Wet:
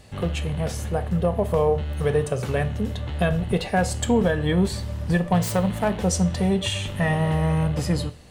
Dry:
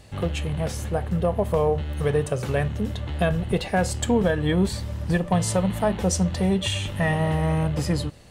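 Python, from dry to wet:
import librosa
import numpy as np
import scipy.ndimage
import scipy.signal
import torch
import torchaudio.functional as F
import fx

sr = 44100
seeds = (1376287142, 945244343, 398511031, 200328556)

y = fx.self_delay(x, sr, depth_ms=0.099, at=(5.34, 6.02))
y = fx.rev_double_slope(y, sr, seeds[0], early_s=0.42, late_s=1.8, knee_db=-26, drr_db=11.5)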